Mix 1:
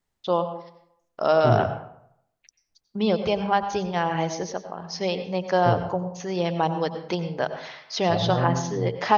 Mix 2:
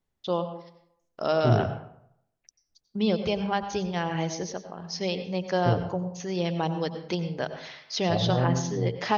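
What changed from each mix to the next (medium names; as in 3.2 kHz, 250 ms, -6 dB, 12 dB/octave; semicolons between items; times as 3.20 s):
first voice: add peaking EQ 910 Hz -7 dB 2 oct; second voice: add low-pass 1.1 kHz 12 dB/octave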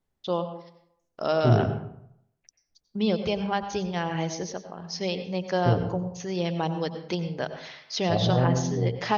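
second voice: send +10.0 dB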